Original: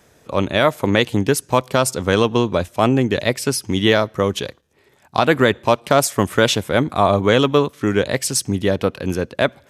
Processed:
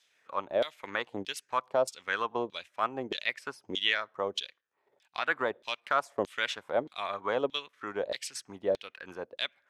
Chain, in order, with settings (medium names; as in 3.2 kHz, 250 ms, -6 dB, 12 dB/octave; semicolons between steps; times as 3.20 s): LFO band-pass saw down 1.6 Hz 490–3900 Hz; treble shelf 3.9 kHz +6.5 dB; transient shaper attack 0 dB, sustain -5 dB; trim -6 dB